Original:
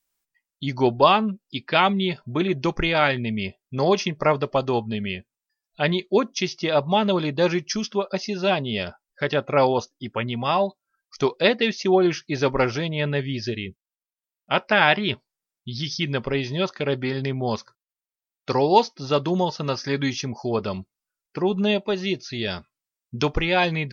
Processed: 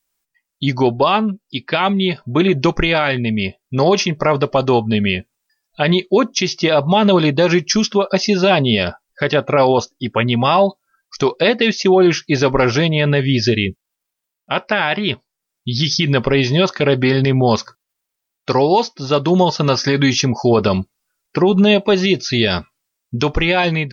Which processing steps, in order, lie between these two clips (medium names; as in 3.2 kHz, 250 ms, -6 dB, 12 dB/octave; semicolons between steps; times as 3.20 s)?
level rider gain up to 12 dB; peak limiter -8.5 dBFS, peak gain reduction 7.5 dB; trim +4 dB